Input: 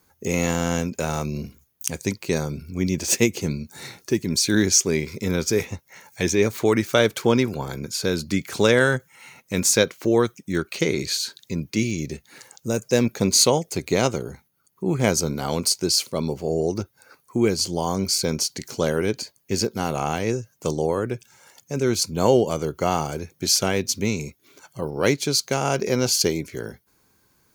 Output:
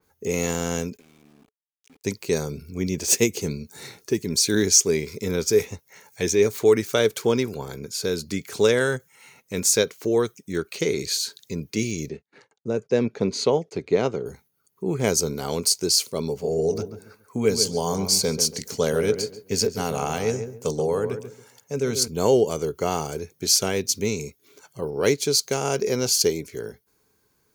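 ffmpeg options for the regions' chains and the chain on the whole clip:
ffmpeg -i in.wav -filter_complex "[0:a]asettb=1/sr,asplit=3[link_01][link_02][link_03];[link_01]atrim=end=0.974[link_04];[link_02]atrim=start=0.97:end=2.04,asetpts=PTS-STARTPTS,afade=type=in:duration=0.004:curve=qsin,afade=type=out:start_time=1.066:duration=0.004:curve=qsin,asplit=3[link_05][link_06][link_07];[link_05]bandpass=frequency=270:width_type=q:width=8,volume=0dB[link_08];[link_06]bandpass=frequency=2290:width_type=q:width=8,volume=-6dB[link_09];[link_07]bandpass=frequency=3010:width_type=q:width=8,volume=-9dB[link_10];[link_08][link_09][link_10]amix=inputs=3:normalize=0,acompressor=threshold=-53dB:ratio=2:attack=3.2:release=140:knee=1:detection=peak,aeval=exprs='val(0)*gte(abs(val(0)),0.00299)':channel_layout=same[link_11];[link_03]atrim=start=2.036[link_12];[link_04][link_11]acrossfade=duration=0.004:curve1=hsin:curve2=qsin[link_13];[link_13][link_12]acrossfade=duration=0.004:curve1=qsin:curve2=hsin,asettb=1/sr,asplit=3[link_14][link_15][link_16];[link_14]atrim=end=12.094[link_17];[link_15]atrim=start=12.09:end=14.26,asetpts=PTS-STARTPTS,afade=type=in:duration=0.004:curve=qsin,afade=type=out:start_time=2.166:duration=0.004:curve=qsin,agate=range=-30dB:threshold=-48dB:ratio=16:release=100:detection=peak,highpass=110,lowpass=4000,highshelf=frequency=2800:gain=-8.5[link_18];[link_16]atrim=start=14.256[link_19];[link_17][link_18]acrossfade=duration=0.004:curve1=hsin:curve2=qsin[link_20];[link_20][link_19]acrossfade=duration=0.004:curve1=qsin:curve2=hsin,asettb=1/sr,asplit=3[link_21][link_22][link_23];[link_21]atrim=end=16.294[link_24];[link_22]atrim=start=16.29:end=22.08,asetpts=PTS-STARTPTS,afade=type=in:duration=0.004:curve=qsin,afade=type=out:start_time=5.786:duration=0.004:curve=qsin,highpass=59,bandreject=frequency=350:width=5.1,asplit=2[link_25][link_26];[link_26]adelay=138,lowpass=frequency=1400:poles=1,volume=-8dB,asplit=2[link_27][link_28];[link_28]adelay=138,lowpass=frequency=1400:poles=1,volume=0.27,asplit=2[link_29][link_30];[link_30]adelay=138,lowpass=frequency=1400:poles=1,volume=0.27[link_31];[link_25][link_27][link_29][link_31]amix=inputs=4:normalize=0,atrim=end_sample=255339[link_32];[link_23]atrim=start=22.076[link_33];[link_24][link_32]acrossfade=duration=0.004:curve1=hsin:curve2=qsin[link_34];[link_34][link_33]acrossfade=duration=0.004:curve1=qsin:curve2=hsin,equalizer=frequency=430:width=6.3:gain=9.5,dynaudnorm=framelen=180:gausssize=21:maxgain=3.5dB,adynamicequalizer=threshold=0.0178:dfrequency=3900:dqfactor=0.7:tfrequency=3900:tqfactor=0.7:attack=5:release=100:ratio=0.375:range=3:mode=boostabove:tftype=highshelf,volume=-4.5dB" out.wav

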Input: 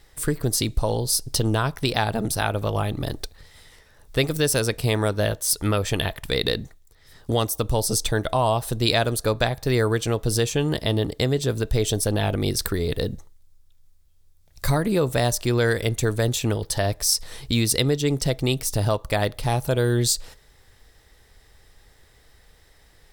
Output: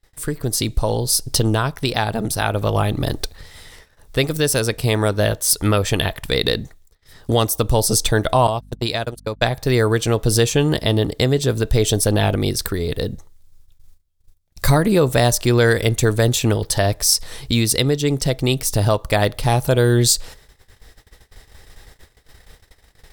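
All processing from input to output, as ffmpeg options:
ffmpeg -i in.wav -filter_complex "[0:a]asettb=1/sr,asplit=3[link_01][link_02][link_03];[link_01]atrim=end=8.474[link_04];[link_02]atrim=start=8.47:end=9.42,asetpts=PTS-STARTPTS,afade=type=in:duration=0.004:curve=qsin,afade=type=out:start_time=0.946:duration=0.004:curve=qsin,agate=range=-43dB:threshold=-23dB:ratio=16:release=100:detection=peak,aeval=exprs='val(0)+0.00355*(sin(2*PI*50*n/s)+sin(2*PI*2*50*n/s)/2+sin(2*PI*3*50*n/s)/3+sin(2*PI*4*50*n/s)/4+sin(2*PI*5*50*n/s)/5)':channel_layout=same,acompressor=threshold=-23dB:ratio=6:attack=3.2:release=140:knee=1:detection=peak[link_05];[link_03]atrim=start=9.416[link_06];[link_04][link_05]acrossfade=duration=0.004:curve1=hsin:curve2=qsin[link_07];[link_07][link_06]acrossfade=duration=0.004:curve1=qsin:curve2=hsin,agate=range=-22dB:threshold=-52dB:ratio=16:detection=peak,dynaudnorm=framelen=340:gausssize=3:maxgain=11.5dB,volume=-1dB" out.wav

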